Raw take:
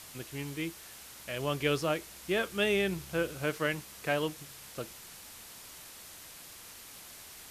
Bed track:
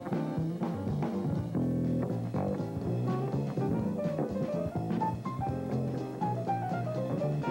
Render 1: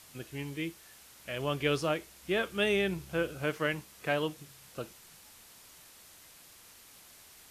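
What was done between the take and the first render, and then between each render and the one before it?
noise print and reduce 6 dB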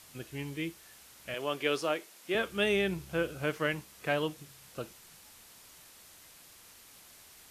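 1.34–2.35 s: high-pass 290 Hz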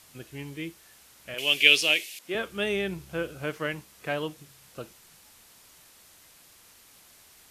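1.38–2.19 s: resonant high shelf 1.8 kHz +12.5 dB, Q 3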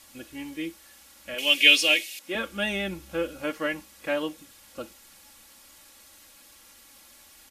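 comb 3.6 ms, depth 84%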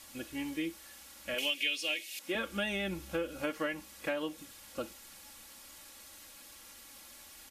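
compression 6:1, threshold -31 dBFS, peak gain reduction 18.5 dB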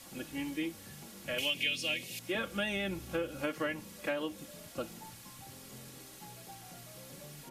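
add bed track -20.5 dB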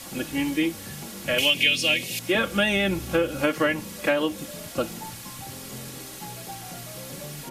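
trim +12 dB

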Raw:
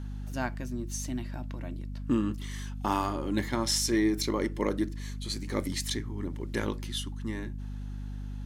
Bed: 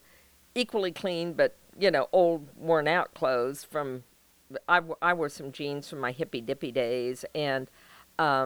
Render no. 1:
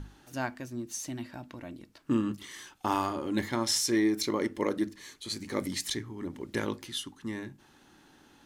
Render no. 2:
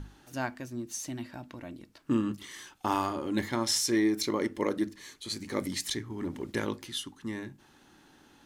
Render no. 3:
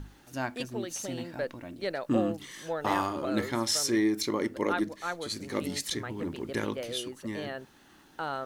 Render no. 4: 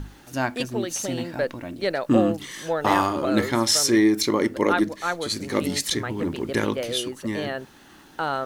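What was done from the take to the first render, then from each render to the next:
hum notches 50/100/150/200/250 Hz
6.10–6.52 s: waveshaping leveller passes 1
add bed -9.5 dB
trim +8 dB

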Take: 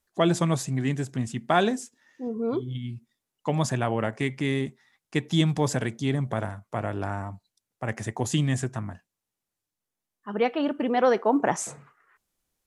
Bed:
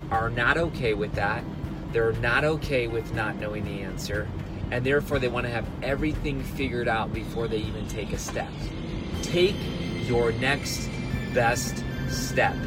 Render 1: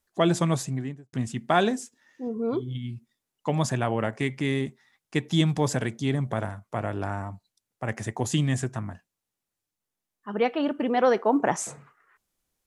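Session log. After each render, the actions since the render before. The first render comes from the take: 0.58–1.13 s: studio fade out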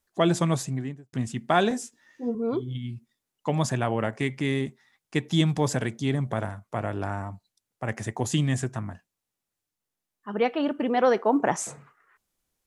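1.69–2.35 s: doubling 17 ms -3 dB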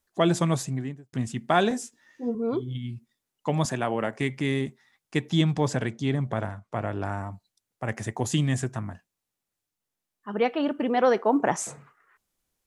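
3.65–4.20 s: high-pass 170 Hz; 5.30–7.05 s: distance through air 50 m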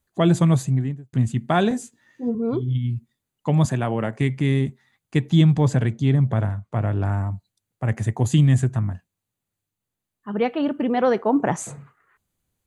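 peaking EQ 100 Hz +12 dB 2.2 oct; band-stop 5.4 kHz, Q 5.5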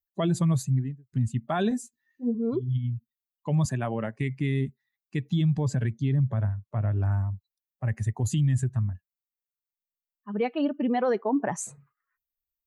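expander on every frequency bin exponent 1.5; peak limiter -17.5 dBFS, peak gain reduction 10.5 dB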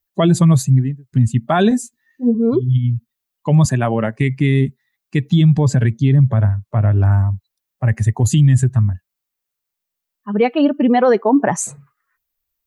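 trim +12 dB

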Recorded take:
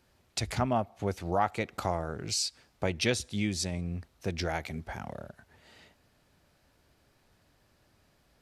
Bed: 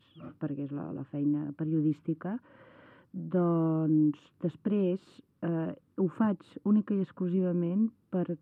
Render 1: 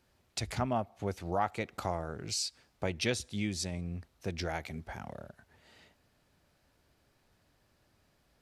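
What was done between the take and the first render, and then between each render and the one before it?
trim -3.5 dB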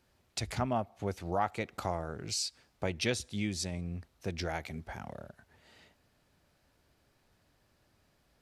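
no audible change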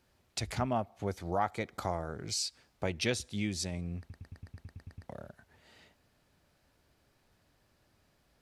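1.04–2.36 s: band-stop 2.7 kHz, Q 6.3; 3.99 s: stutter in place 0.11 s, 10 plays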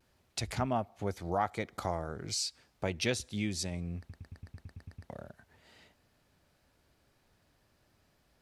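vibrato 0.4 Hz 22 cents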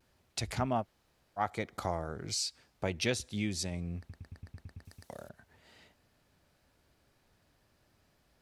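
0.83–1.39 s: room tone, crossfade 0.06 s; 4.85–5.29 s: tone controls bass -6 dB, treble +13 dB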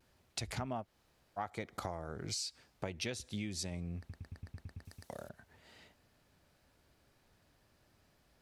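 compression 6:1, threshold -36 dBFS, peak gain reduction 10 dB

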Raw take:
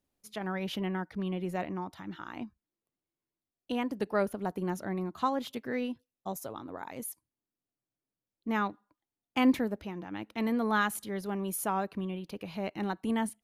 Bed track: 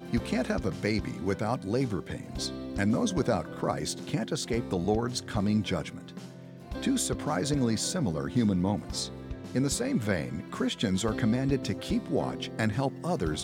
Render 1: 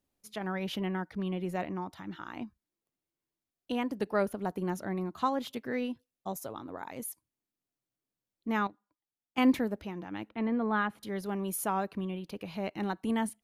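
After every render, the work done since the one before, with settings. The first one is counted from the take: 8.67–9.38 s: gain -9 dB; 10.29–11.03 s: distance through air 390 m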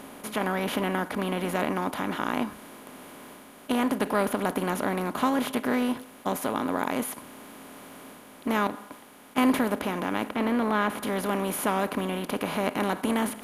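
spectral levelling over time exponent 0.4; reverse; upward compressor, threshold -39 dBFS; reverse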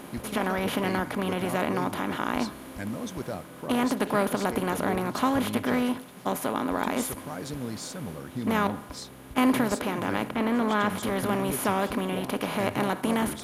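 add bed track -7.5 dB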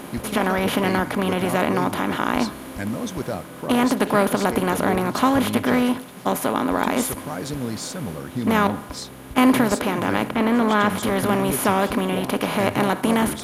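trim +6.5 dB

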